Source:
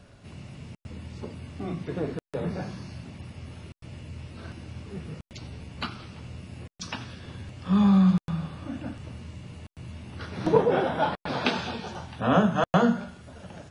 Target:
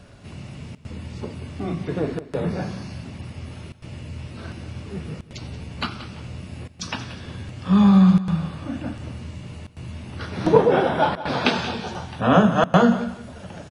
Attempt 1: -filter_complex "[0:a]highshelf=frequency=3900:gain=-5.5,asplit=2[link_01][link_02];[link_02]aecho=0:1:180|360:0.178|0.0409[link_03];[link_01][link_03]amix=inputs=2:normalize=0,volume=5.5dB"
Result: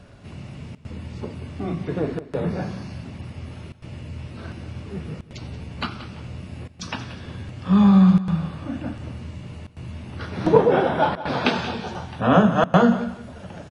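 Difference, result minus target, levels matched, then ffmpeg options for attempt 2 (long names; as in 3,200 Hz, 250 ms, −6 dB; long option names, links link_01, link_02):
8,000 Hz band −4.0 dB
-filter_complex "[0:a]asplit=2[link_01][link_02];[link_02]aecho=0:1:180|360:0.178|0.0409[link_03];[link_01][link_03]amix=inputs=2:normalize=0,volume=5.5dB"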